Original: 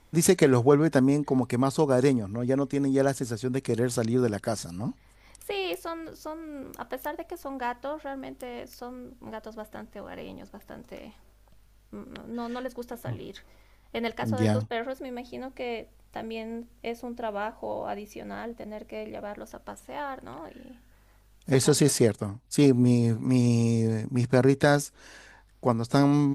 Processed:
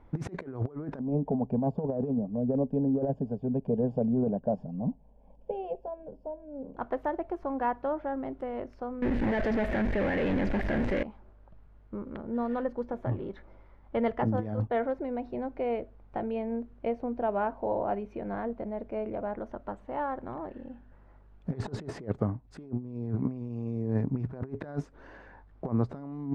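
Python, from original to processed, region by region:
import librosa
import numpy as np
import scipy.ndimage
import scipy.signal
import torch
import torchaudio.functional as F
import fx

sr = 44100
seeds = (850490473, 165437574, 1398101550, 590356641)

y = fx.chain(x, sr, fx.moving_average(points=22),
    fx.fixed_phaser(hz=340.0, stages=6), at=(0.99, 6.77))
y = fx.chain(y, sr, fx.power_curve(exponent=0.35),
    fx.high_shelf_res(hz=1500.0, db=6.5, q=3.0),
    fx.env_flatten(amount_pct=70), at=(9.02, 11.03))
y = scipy.signal.sosfilt(scipy.signal.butter(2, 1200.0, 'lowpass', fs=sr, output='sos'), y)
y = fx.over_compress(y, sr, threshold_db=-28.0, ratio=-0.5)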